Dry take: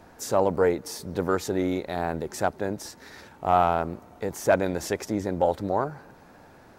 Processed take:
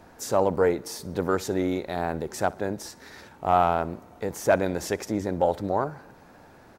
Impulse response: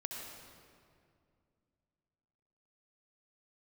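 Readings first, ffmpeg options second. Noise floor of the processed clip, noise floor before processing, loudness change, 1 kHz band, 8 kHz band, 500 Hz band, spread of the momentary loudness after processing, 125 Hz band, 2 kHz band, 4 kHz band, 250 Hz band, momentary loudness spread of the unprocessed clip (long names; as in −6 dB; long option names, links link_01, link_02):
−52 dBFS, −52 dBFS, 0.0 dB, 0.0 dB, 0.0 dB, 0.0 dB, 12 LU, 0.0 dB, 0.0 dB, 0.0 dB, 0.0 dB, 12 LU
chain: -af "aecho=1:1:63|126|189:0.0794|0.0365|0.0168"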